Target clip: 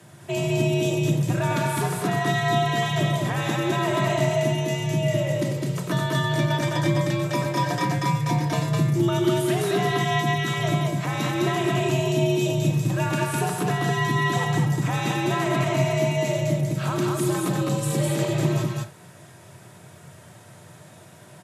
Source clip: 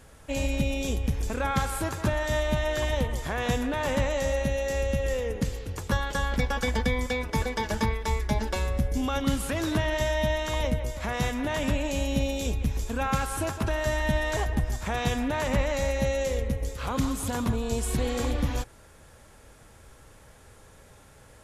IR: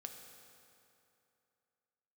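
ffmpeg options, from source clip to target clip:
-filter_complex "[0:a]aecho=1:1:3.3:0.42[link_01];[1:a]atrim=start_sample=2205,atrim=end_sample=3087[link_02];[link_01][link_02]afir=irnorm=-1:irlink=0,asplit=2[link_03][link_04];[link_04]alimiter=level_in=2dB:limit=-24dB:level=0:latency=1:release=366,volume=-2dB,volume=3dB[link_05];[link_03][link_05]amix=inputs=2:normalize=0,afreqshift=88,aecho=1:1:93.29|207:0.355|0.794"

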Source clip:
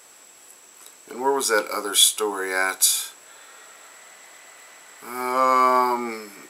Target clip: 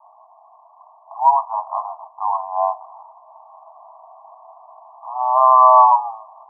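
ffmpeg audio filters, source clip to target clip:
ffmpeg -i in.wav -af "acontrast=60,asuperpass=centerf=850:order=20:qfactor=1.7,volume=6dB" out.wav

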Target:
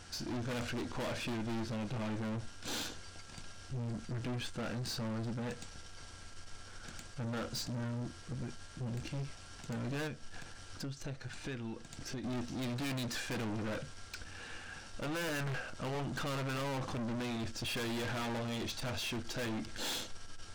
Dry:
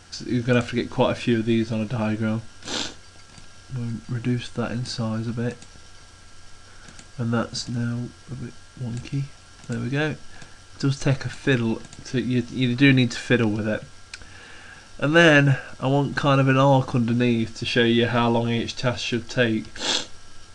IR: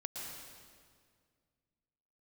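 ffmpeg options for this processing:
-filter_complex "[0:a]asettb=1/sr,asplit=3[link_01][link_02][link_03];[link_01]atrim=end=10.074[link_04];[link_02]atrim=start=10.07:end=12.24,asetpts=PTS-STARTPTS,afade=type=in:duration=0.004:curve=qsin,afade=type=out:start_time=2.166:duration=0.004:curve=qsin,acompressor=threshold=-33dB:ratio=6[link_05];[link_03]atrim=start=12.236[link_06];[link_04][link_05]acrossfade=duration=0.004:curve1=hsin:curve2=qsin[link_07];[link_07][link_06]acrossfade=duration=0.004:curve1=qsin:curve2=hsin,aeval=exprs='(tanh(44.7*val(0)+0.3)-tanh(0.3))/44.7':channel_layout=same,volume=-3dB"

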